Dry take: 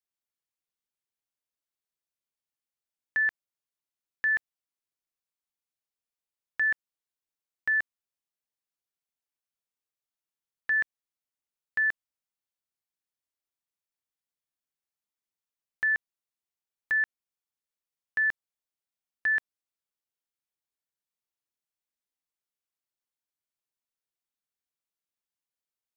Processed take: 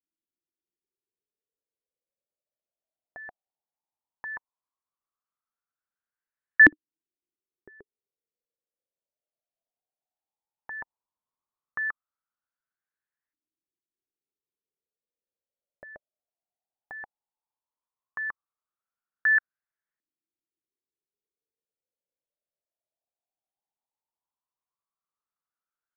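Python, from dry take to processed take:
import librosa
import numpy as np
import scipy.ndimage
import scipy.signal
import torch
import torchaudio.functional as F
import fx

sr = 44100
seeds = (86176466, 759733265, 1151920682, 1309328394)

y = fx.low_shelf(x, sr, hz=480.0, db=5.5, at=(10.78, 11.88))
y = fx.filter_lfo_lowpass(y, sr, shape='saw_up', hz=0.15, low_hz=300.0, high_hz=1800.0, q=6.7)
y = y * 10.0 ** (-3.5 / 20.0)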